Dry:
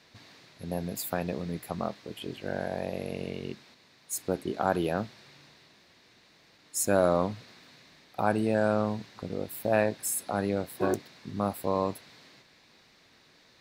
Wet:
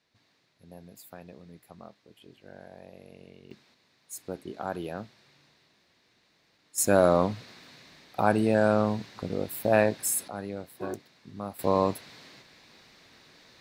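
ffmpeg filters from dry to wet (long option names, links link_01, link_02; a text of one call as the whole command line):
ffmpeg -i in.wav -af "asetnsamples=nb_out_samples=441:pad=0,asendcmd='3.51 volume volume -7dB;6.78 volume volume 3dB;10.28 volume volume -7.5dB;11.59 volume volume 4dB',volume=-15dB" out.wav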